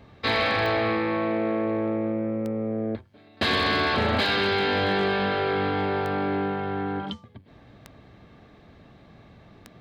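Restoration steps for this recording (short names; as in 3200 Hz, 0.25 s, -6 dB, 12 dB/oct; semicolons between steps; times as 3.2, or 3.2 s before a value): clip repair -16.5 dBFS; de-click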